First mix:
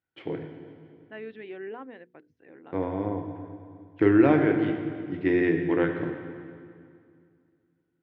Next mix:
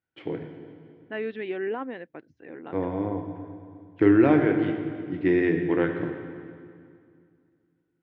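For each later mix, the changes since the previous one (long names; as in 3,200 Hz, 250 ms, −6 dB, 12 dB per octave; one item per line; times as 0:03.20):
second voice +8.0 dB
master: remove mains-hum notches 60/120/180/240/300/360/420/480 Hz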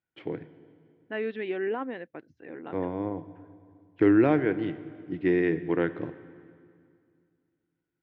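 first voice: send −10.5 dB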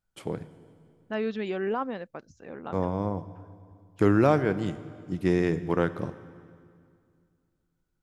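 master: remove loudspeaker in its box 150–3,100 Hz, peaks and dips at 200 Hz −9 dB, 310 Hz +6 dB, 590 Hz −5 dB, 860 Hz −4 dB, 1,200 Hz −9 dB, 1,900 Hz +5 dB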